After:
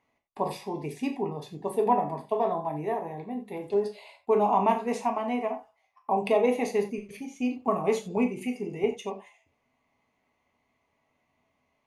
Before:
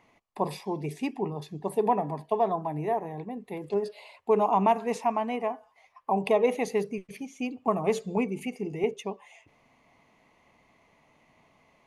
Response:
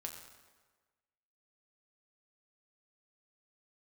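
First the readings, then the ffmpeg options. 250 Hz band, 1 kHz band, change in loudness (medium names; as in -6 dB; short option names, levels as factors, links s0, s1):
+1.0 dB, 0.0 dB, +0.5 dB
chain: -filter_complex "[0:a]agate=range=0.282:threshold=0.00316:ratio=16:detection=peak[s0];[1:a]atrim=start_sample=2205,afade=t=out:st=0.14:d=0.01,atrim=end_sample=6615[s1];[s0][s1]afir=irnorm=-1:irlink=0,volume=1.41"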